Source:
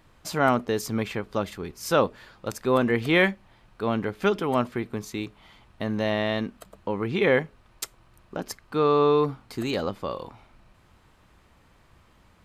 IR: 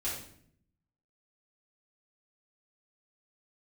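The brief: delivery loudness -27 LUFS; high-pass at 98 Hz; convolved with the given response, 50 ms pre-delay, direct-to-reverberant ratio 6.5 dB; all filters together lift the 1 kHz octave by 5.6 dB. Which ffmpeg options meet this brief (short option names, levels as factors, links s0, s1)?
-filter_complex "[0:a]highpass=98,equalizer=f=1000:t=o:g=7,asplit=2[s0][s1];[1:a]atrim=start_sample=2205,adelay=50[s2];[s1][s2]afir=irnorm=-1:irlink=0,volume=0.299[s3];[s0][s3]amix=inputs=2:normalize=0,volume=0.668"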